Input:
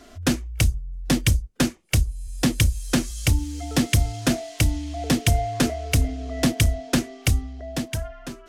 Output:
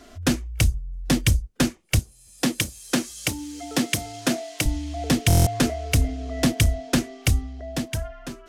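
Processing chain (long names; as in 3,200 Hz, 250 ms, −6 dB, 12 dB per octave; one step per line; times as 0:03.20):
0:01.99–0:04.66: high-pass filter 210 Hz 12 dB per octave
buffer that repeats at 0:05.28, samples 1,024, times 7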